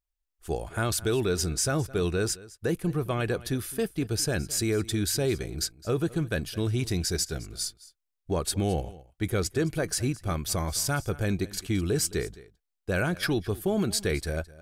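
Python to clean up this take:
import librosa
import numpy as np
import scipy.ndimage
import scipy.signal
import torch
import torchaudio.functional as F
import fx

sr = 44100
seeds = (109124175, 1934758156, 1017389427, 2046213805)

y = fx.fix_declip(x, sr, threshold_db=-16.0)
y = fx.fix_echo_inverse(y, sr, delay_ms=214, level_db=-19.5)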